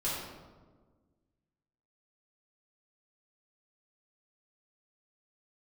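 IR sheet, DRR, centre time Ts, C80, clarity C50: −9.5 dB, 85 ms, 2.0 dB, −0.5 dB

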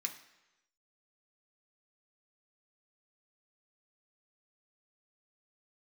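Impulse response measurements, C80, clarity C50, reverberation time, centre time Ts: 13.5 dB, 10.5 dB, 1.0 s, 13 ms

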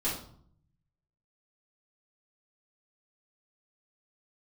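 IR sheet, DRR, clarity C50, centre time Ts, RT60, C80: −10.5 dB, 4.5 dB, 37 ms, 0.60 s, 9.0 dB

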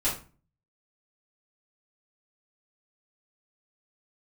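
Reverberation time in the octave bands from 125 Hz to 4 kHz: 0.65, 0.50, 0.35, 0.35, 0.30, 0.25 seconds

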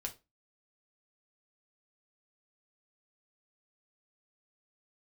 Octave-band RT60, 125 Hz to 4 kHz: 0.25, 0.30, 0.25, 0.25, 0.20, 0.20 seconds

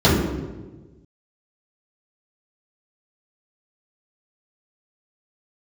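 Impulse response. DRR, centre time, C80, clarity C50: −11.0 dB, 76 ms, 3.0 dB, 1.0 dB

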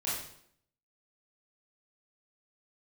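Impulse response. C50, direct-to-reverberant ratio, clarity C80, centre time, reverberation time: 1.5 dB, −9.5 dB, 5.5 dB, 57 ms, 0.70 s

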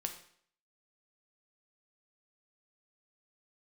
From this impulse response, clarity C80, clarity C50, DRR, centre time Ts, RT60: 12.5 dB, 9.5 dB, 4.5 dB, 14 ms, 0.60 s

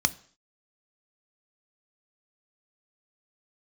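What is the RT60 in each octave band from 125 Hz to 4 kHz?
0.45, 0.50, 0.50, 0.50, 0.55, 0.55 seconds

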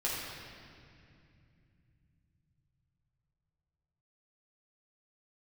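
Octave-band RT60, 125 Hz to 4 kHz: 6.0, 4.5, 2.7, 2.3, 2.5, 2.0 seconds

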